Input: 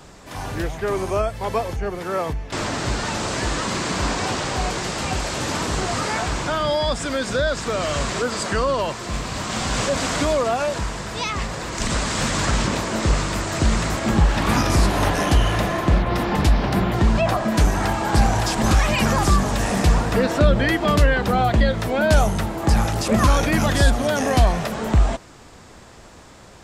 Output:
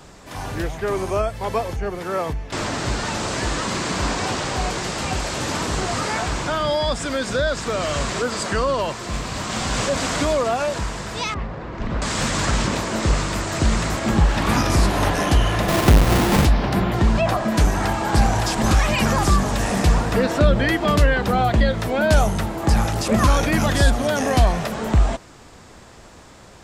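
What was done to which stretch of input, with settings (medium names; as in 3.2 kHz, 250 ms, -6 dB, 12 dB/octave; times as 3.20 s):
11.34–12.02 s: tape spacing loss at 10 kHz 41 dB
15.68–16.45 s: square wave that keeps the level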